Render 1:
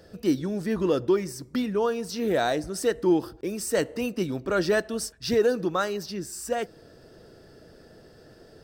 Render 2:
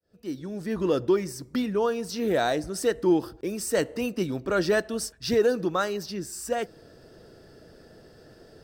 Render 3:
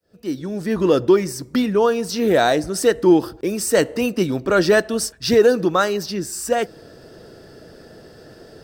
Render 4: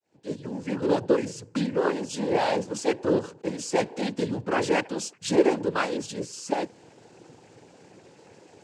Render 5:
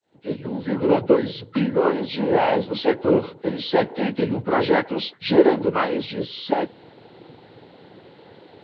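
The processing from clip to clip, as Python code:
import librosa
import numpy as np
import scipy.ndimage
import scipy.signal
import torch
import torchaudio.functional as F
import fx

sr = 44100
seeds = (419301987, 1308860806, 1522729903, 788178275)

y1 = fx.fade_in_head(x, sr, length_s=0.96)
y2 = fx.low_shelf(y1, sr, hz=68.0, db=-6.0)
y2 = F.gain(torch.from_numpy(y2), 8.5).numpy()
y3 = fx.noise_vocoder(y2, sr, seeds[0], bands=8)
y3 = F.gain(torch.from_numpy(y3), -8.0).numpy()
y4 = fx.freq_compress(y3, sr, knee_hz=1200.0, ratio=1.5)
y4 = F.gain(torch.from_numpy(y4), 5.5).numpy()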